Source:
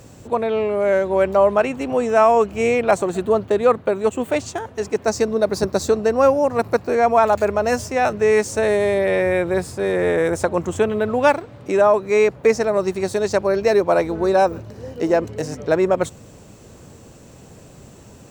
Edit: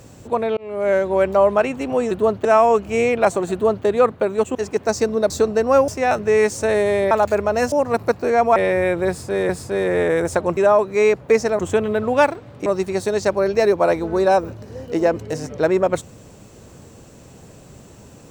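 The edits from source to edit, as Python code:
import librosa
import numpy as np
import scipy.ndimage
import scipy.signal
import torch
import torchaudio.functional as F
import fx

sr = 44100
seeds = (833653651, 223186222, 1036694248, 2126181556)

y = fx.edit(x, sr, fx.fade_in_span(start_s=0.57, length_s=0.33),
    fx.duplicate(start_s=3.18, length_s=0.34, to_s=2.11),
    fx.cut(start_s=4.21, length_s=0.53),
    fx.cut(start_s=5.49, length_s=0.3),
    fx.swap(start_s=6.37, length_s=0.84, other_s=7.82, other_length_s=1.23),
    fx.repeat(start_s=9.57, length_s=0.41, count=2),
    fx.move(start_s=11.72, length_s=1.02, to_s=10.65), tone=tone)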